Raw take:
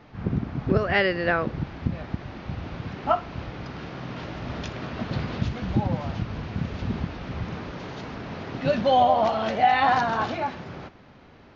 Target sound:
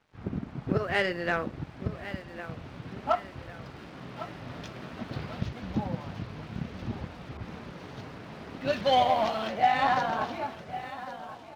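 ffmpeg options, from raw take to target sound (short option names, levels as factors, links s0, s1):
-filter_complex "[0:a]highpass=f=79:p=1,aecho=1:1:1104|2208|3312|4416|5520:0.266|0.122|0.0563|0.0259|0.0119,flanger=delay=1.2:depth=6.6:regen=-62:speed=0.56:shape=triangular,aeval=exprs='0.266*(cos(1*acos(clip(val(0)/0.266,-1,1)))-cos(1*PI/2))+0.00944*(cos(7*acos(clip(val(0)/0.266,-1,1)))-cos(7*PI/2))':c=same,aeval=exprs='sgn(val(0))*max(abs(val(0))-0.0015,0)':c=same,asettb=1/sr,asplit=3[s0][s1][s2];[s0]atrim=end=7.374[s3];[s1]atrim=start=7.37:end=9.48,asetpts=PTS-STARTPTS,afade=t=in:d=0.004:c=qsin,afade=t=out:st=2.106:d=0.004:c=qsin,adynamicequalizer=threshold=0.00891:dfrequency=1700:dqfactor=0.7:tfrequency=1700:tqfactor=0.7:attack=5:release=100:ratio=0.375:range=3:mode=boostabove:tftype=highshelf[s4];[s2]atrim=start=9.476[s5];[s3][s4]acrossfade=d=0.004:c1=hsin:c2=qsin[s6];[s6][s5]acrossfade=d=0.004:c1=qsin:c2=hsin"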